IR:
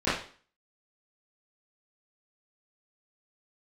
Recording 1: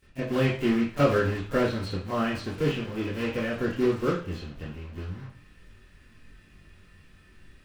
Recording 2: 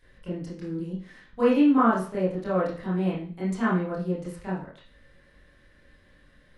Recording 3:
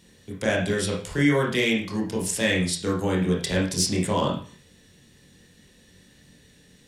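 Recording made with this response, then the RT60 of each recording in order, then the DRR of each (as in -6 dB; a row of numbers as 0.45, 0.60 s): 1; 0.45, 0.45, 0.45 s; -16.5, -10.0, -3.5 dB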